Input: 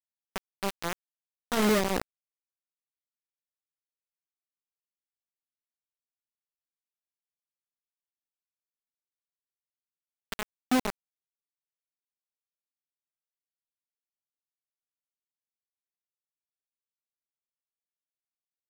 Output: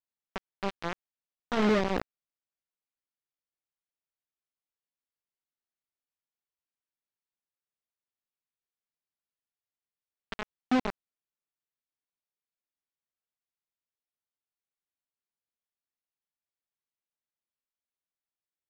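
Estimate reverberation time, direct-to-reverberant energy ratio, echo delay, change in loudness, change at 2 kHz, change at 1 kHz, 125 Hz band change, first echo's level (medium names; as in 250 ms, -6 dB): no reverb, no reverb, no echo, -1.0 dB, -1.5 dB, -1.0 dB, 0.0 dB, no echo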